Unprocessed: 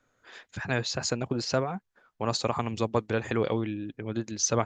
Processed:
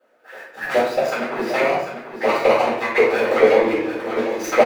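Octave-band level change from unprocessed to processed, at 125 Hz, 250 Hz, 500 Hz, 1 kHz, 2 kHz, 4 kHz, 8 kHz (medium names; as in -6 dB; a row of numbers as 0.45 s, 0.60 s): -9.0 dB, +6.0 dB, +14.0 dB, +12.0 dB, +14.0 dB, +2.0 dB, no reading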